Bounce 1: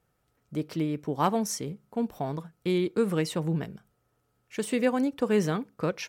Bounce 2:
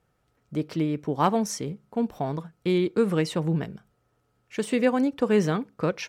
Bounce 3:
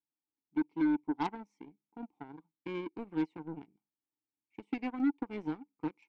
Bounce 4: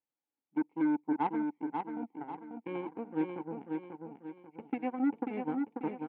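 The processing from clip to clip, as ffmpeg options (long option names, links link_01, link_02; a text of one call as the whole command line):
ffmpeg -i in.wav -af "highshelf=frequency=10000:gain=-11.5,volume=3dB" out.wav
ffmpeg -i in.wav -filter_complex "[0:a]asplit=3[link_01][link_02][link_03];[link_01]bandpass=frequency=300:width_type=q:width=8,volume=0dB[link_04];[link_02]bandpass=frequency=870:width_type=q:width=8,volume=-6dB[link_05];[link_03]bandpass=frequency=2240:width_type=q:width=8,volume=-9dB[link_06];[link_04][link_05][link_06]amix=inputs=3:normalize=0,aeval=exprs='0.0891*(cos(1*acos(clip(val(0)/0.0891,-1,1)))-cos(1*PI/2))+0.00501*(cos(3*acos(clip(val(0)/0.0891,-1,1)))-cos(3*PI/2))+0.00158*(cos(6*acos(clip(val(0)/0.0891,-1,1)))-cos(6*PI/2))+0.00891*(cos(7*acos(clip(val(0)/0.0891,-1,1)))-cos(7*PI/2))+0.001*(cos(8*acos(clip(val(0)/0.0891,-1,1)))-cos(8*PI/2))':channel_layout=same" out.wav
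ffmpeg -i in.wav -filter_complex "[0:a]highpass=110,equalizer=frequency=230:width_type=q:width=4:gain=3,equalizer=frequency=520:width_type=q:width=4:gain=10,equalizer=frequency=800:width_type=q:width=4:gain=7,lowpass=frequency=2700:width=0.5412,lowpass=frequency=2700:width=1.3066,asplit=2[link_01][link_02];[link_02]aecho=0:1:540|1080|1620|2160|2700:0.596|0.238|0.0953|0.0381|0.0152[link_03];[link_01][link_03]amix=inputs=2:normalize=0,volume=-1.5dB" out.wav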